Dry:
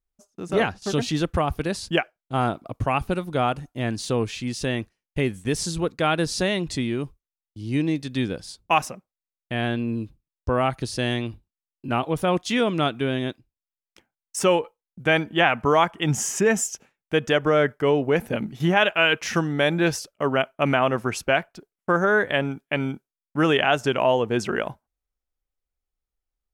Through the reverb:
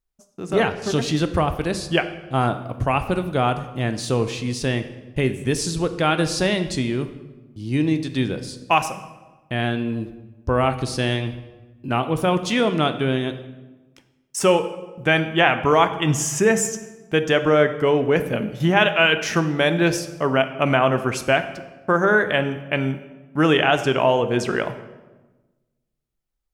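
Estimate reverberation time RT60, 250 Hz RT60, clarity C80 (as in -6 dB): 1.2 s, 1.6 s, 13.5 dB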